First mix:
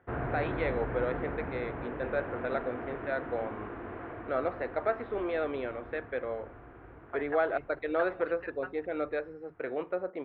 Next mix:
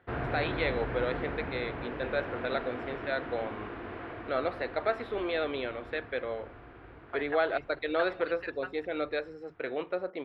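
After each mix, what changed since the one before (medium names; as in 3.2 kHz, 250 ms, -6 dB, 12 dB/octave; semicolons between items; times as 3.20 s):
master: remove low-pass 1.8 kHz 12 dB/octave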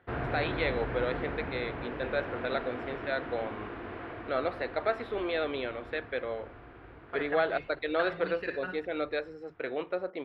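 second voice: remove resonant high-pass 790 Hz, resonance Q 1.6; reverb: on, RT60 0.35 s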